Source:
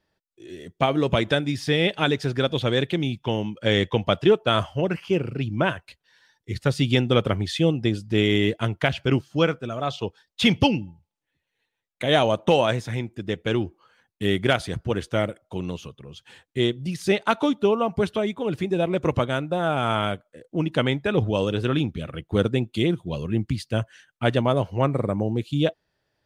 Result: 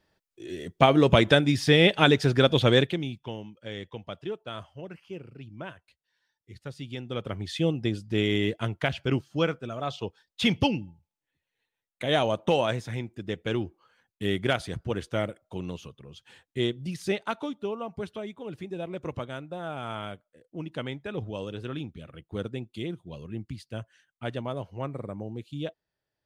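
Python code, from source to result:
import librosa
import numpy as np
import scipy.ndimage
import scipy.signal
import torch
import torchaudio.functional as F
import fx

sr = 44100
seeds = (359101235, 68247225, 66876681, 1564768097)

y = fx.gain(x, sr, db=fx.line((2.77, 2.5), (2.98, -6.0), (3.64, -17.0), (6.97, -17.0), (7.6, -5.0), (16.98, -5.0), (17.49, -12.0)))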